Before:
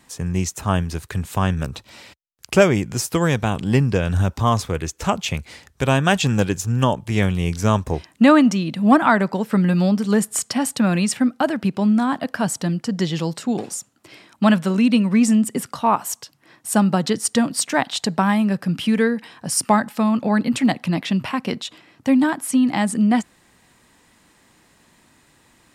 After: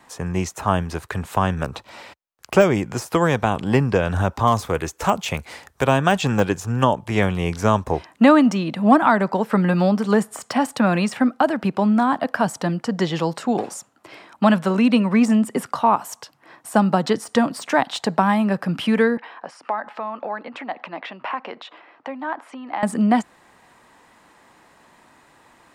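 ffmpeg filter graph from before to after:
-filter_complex "[0:a]asettb=1/sr,asplit=3[s0][s1][s2];[s0]atrim=end=4.474[s3];[s1]atrim=start=4.47:end=5.85,asetpts=PTS-STARTPTS,afade=t=in:d=0.004:c=qsin,afade=t=out:st=1.376:d=0.004:c=qsin,highshelf=f=8100:g=10,asoftclip=type=hard:threshold=0.447[s4];[s2]atrim=start=5.846[s5];[s3][s4]acrossfade=d=0.004:c1=hsin:c2=qsin[s6];[s6][s5]acrossfade=d=0.004:c1=qsin:c2=hsin,asettb=1/sr,asplit=3[s7][s8][s9];[s7]atrim=end=19.174[s10];[s8]atrim=start=19.17:end=22.83,asetpts=PTS-STARTPTS,afade=t=in:d=0.004:c=qsin,afade=t=out:st=3.656:d=0.004:c=qsin,acompressor=threshold=0.0398:ratio=3:attack=3.2:release=140:knee=1:detection=peak,highpass=420,lowpass=2900[s11];[s9]atrim=start=22.826[s12];[s10][s11]acrossfade=d=0.004:c1=hsin:c2=qsin[s13];[s13][s12]acrossfade=d=0.004:c1=qsin:c2=hsin,deesser=0.45,equalizer=f=880:t=o:w=2.7:g=13,acrossover=split=350|3000[s14][s15][s16];[s15]acompressor=threshold=0.178:ratio=2[s17];[s14][s17][s16]amix=inputs=3:normalize=0,volume=0.596"

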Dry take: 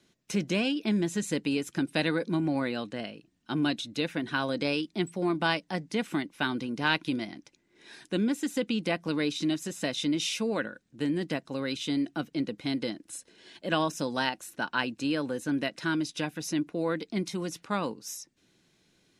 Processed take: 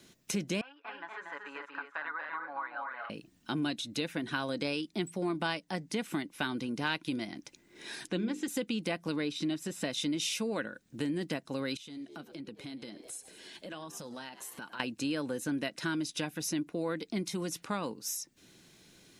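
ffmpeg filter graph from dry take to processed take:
-filter_complex "[0:a]asettb=1/sr,asplit=3[s0][s1][s2];[s0]atrim=end=0.614[s3];[s1]atrim=start=0.61:end=3.1,asetpts=PTS-STARTPTS,afade=t=in:d=0.004:c=qsin,afade=t=out:st=2.486:d=0.004:c=qsin,asuperpass=centerf=1200:order=4:qfactor=1.8,aecho=1:1:7.1:0.55,atrim=end_sample=109809,aecho=1:1:234|274:0.531|0.473,atrim=end_sample=109809[s4];[s2]atrim=start=3.096[s5];[s3][s4]acrossfade=d=0.004:c1=hsin:c2=qsin[s6];[s6][s5]acrossfade=d=0.004:c1=qsin:c2=hsin,asettb=1/sr,asplit=3[s7][s8][s9];[s7]atrim=end=8.074[s10];[s8]atrim=start=8.07:end=8.48,asetpts=PTS-STARTPTS,afade=t=in:d=0.004:c=qsin,afade=t=out:st=0.406:d=0.004:c=qsin,lowpass=5000,bandreject=f=50:t=h:w=6,bandreject=f=100:t=h:w=6,bandreject=f=150:t=h:w=6,bandreject=f=200:t=h:w=6,bandreject=f=250:t=h:w=6,bandreject=f=300:t=h:w=6,bandreject=f=350:t=h:w=6,bandreject=f=400:t=h:w=6,bandreject=f=450:t=h:w=6,aecho=1:1:5.9:0.32,atrim=end_sample=18081[s11];[s9]atrim=start=8.476[s12];[s10][s11]acrossfade=d=0.004:c1=hsin:c2=qsin[s13];[s13][s12]acrossfade=d=0.004:c1=qsin:c2=hsin,asettb=1/sr,asplit=3[s14][s15][s16];[s14]atrim=end=9.164[s17];[s15]atrim=start=9.16:end=9.9,asetpts=PTS-STARTPTS,afade=t=in:d=0.004:c=qsin,afade=t=out:st=0.736:d=0.004:c=qsin,highshelf=f=6100:g=-9,bandreject=f=6600:w=9.9[s18];[s16]atrim=start=9.896[s19];[s17][s18]acrossfade=d=0.004:c1=hsin:c2=qsin[s20];[s20][s19]acrossfade=d=0.004:c1=qsin:c2=hsin,asettb=1/sr,asplit=3[s21][s22][s23];[s21]atrim=end=11.774[s24];[s22]atrim=start=11.77:end=14.8,asetpts=PTS-STARTPTS,afade=t=in:d=0.004:c=qsin,afade=t=out:st=3.026:d=0.004:c=qsin,asplit=5[s25][s26][s27][s28][s29];[s26]adelay=101,afreqshift=70,volume=0.0708[s30];[s27]adelay=202,afreqshift=140,volume=0.0417[s31];[s28]adelay=303,afreqshift=210,volume=0.0245[s32];[s29]adelay=404,afreqshift=280,volume=0.0146[s33];[s25][s30][s31][s32][s33]amix=inputs=5:normalize=0,atrim=end_sample=133623,acompressor=threshold=0.00355:ratio=2.5:attack=3.2:release=140:knee=1:detection=peak,flanger=delay=0.7:depth=4.3:regen=-63:speed=1.4:shape=sinusoidal[s34];[s23]atrim=start=14.796[s35];[s24][s34]acrossfade=d=0.004:c1=hsin:c2=qsin[s36];[s36][s35]acrossfade=d=0.004:c1=qsin:c2=hsin,highshelf=f=9700:g=10.5,acompressor=threshold=0.00447:ratio=2,volume=2.24"

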